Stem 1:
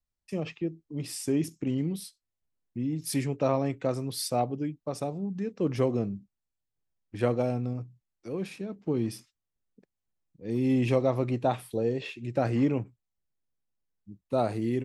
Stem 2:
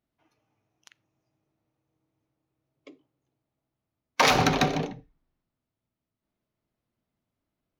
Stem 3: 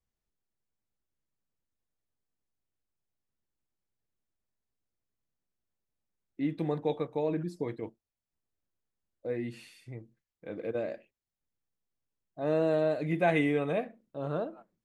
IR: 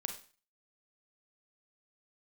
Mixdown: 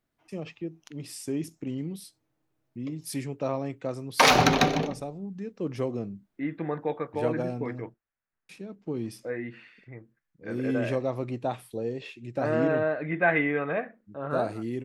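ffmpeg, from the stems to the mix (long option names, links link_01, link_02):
-filter_complex "[0:a]volume=-3.5dB,asplit=3[link_01][link_02][link_03];[link_01]atrim=end=7.94,asetpts=PTS-STARTPTS,afade=type=out:start_time=7.936:duration=0.004:curve=hsin[link_04];[link_02]atrim=start=7.94:end=8.49,asetpts=PTS-STARTPTS,volume=0[link_05];[link_03]atrim=start=8.49,asetpts=PTS-STARTPTS,afade=type=in:duration=0.004:curve=hsin[link_06];[link_04][link_05][link_06]concat=n=3:v=0:a=1[link_07];[1:a]volume=2dB[link_08];[2:a]lowpass=2300,equalizer=frequency=1600:width=1.2:gain=12.5,volume=-0.5dB[link_09];[link_07][link_08][link_09]amix=inputs=3:normalize=0,equalizer=frequency=63:width=0.74:gain=-3.5"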